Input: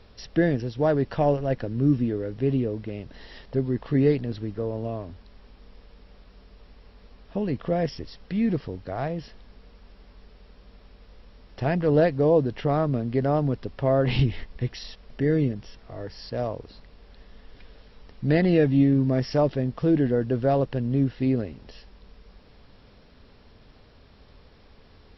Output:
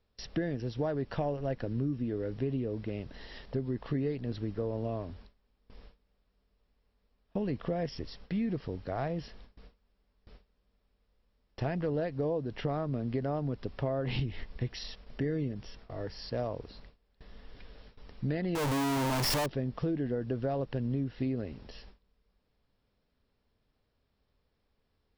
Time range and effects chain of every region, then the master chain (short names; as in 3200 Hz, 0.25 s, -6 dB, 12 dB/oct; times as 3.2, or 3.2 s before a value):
18.55–19.46 infinite clipping + bell 930 Hz +7.5 dB 0.3 oct
whole clip: gate with hold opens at -38 dBFS; compressor 10:1, threshold -26 dBFS; gain -2.5 dB